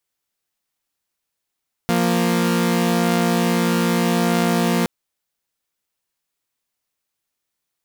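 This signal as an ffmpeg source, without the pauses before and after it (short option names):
-f lavfi -i "aevalsrc='0.15*((2*mod(174.61*t,1)-1)+(2*mod(233.08*t,1)-1))':d=2.97:s=44100"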